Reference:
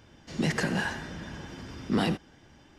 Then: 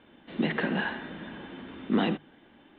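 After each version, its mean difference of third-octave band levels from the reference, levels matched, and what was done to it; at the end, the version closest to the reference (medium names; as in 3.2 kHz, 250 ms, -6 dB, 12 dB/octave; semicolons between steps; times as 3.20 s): 5.5 dB: steep low-pass 3.8 kHz 96 dB/octave; resonant low shelf 160 Hz -10 dB, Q 1.5; hum notches 50/100/150 Hz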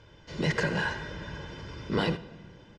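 3.5 dB: low-pass 5.1 kHz 12 dB/octave; comb 2 ms, depth 56%; simulated room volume 2700 m³, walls mixed, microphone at 0.38 m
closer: second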